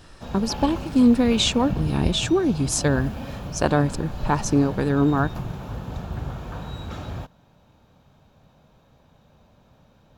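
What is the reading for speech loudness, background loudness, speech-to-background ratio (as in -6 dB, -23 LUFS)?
-22.0 LUFS, -33.0 LUFS, 11.0 dB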